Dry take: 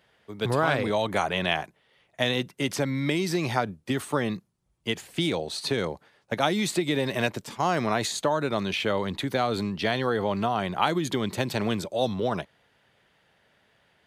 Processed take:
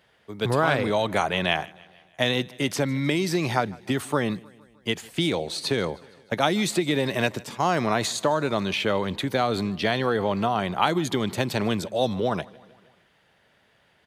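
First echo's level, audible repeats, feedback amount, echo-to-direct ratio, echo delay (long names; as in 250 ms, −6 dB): −23.5 dB, 3, 59%, −21.5 dB, 154 ms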